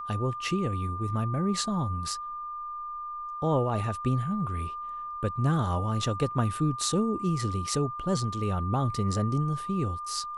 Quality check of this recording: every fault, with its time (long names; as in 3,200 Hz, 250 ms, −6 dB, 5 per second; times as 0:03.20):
whistle 1,200 Hz −34 dBFS